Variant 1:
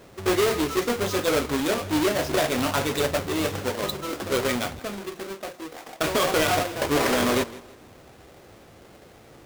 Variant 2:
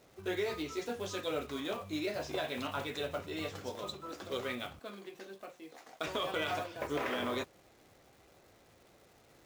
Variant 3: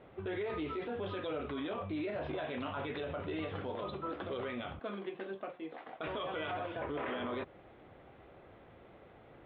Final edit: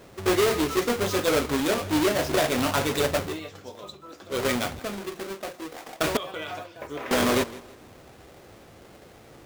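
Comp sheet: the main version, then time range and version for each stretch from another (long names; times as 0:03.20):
1
0:03.32–0:04.36: punch in from 2, crossfade 0.16 s
0:06.17–0:07.11: punch in from 2
not used: 3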